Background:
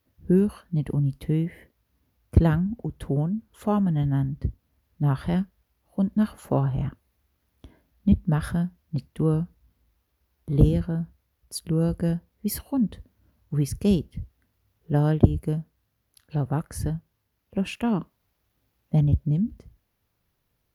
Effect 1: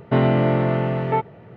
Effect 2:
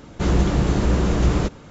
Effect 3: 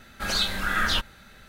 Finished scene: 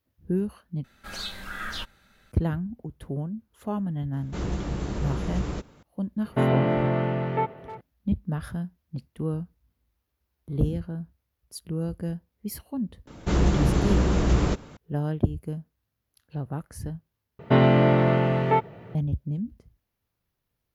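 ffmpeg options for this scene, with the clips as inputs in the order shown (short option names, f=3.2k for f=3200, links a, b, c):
-filter_complex "[2:a]asplit=2[a][b];[1:a]asplit=2[c][d];[0:a]volume=-6.5dB[e];[c]asplit=2[f][g];[g]adelay=310,highpass=300,lowpass=3.4k,asoftclip=type=hard:threshold=-16dB,volume=-14dB[h];[f][h]amix=inputs=2:normalize=0[i];[d]aemphasis=mode=production:type=50kf[j];[e]asplit=3[k][l][m];[k]atrim=end=0.844[n];[3:a]atrim=end=1.48,asetpts=PTS-STARTPTS,volume=-10dB[o];[l]atrim=start=2.316:end=17.394[p];[j]atrim=end=1.56,asetpts=PTS-STARTPTS,volume=-0.5dB[q];[m]atrim=start=18.946[r];[a]atrim=end=1.7,asetpts=PTS-STARTPTS,volume=-11dB,afade=t=in:d=0.004:c=hsin,afade=t=out:st=1.696:d=0.004:c=hsin,adelay=182133S[s];[i]atrim=end=1.56,asetpts=PTS-STARTPTS,volume=-4.5dB,afade=t=in:d=0.004:c=hsin,afade=t=out:st=1.556:d=0.004:c=hsin,adelay=6250[t];[b]atrim=end=1.7,asetpts=PTS-STARTPTS,volume=-3dB,afade=t=in:d=0.004:c=hsin,afade=t=out:st=1.696:d=0.004:c=hsin,adelay=13070[u];[n][o]acrossfade=d=0.004:c1=hsin:c2=hsin[v];[v][p]acrossfade=d=0.004:c1=hsin:c2=hsin[w];[w][q]acrossfade=d=0.004:c1=hsin:c2=hsin[x];[x][r]acrossfade=d=0.004:c1=hsin:c2=hsin[y];[y][s][t][u]amix=inputs=4:normalize=0"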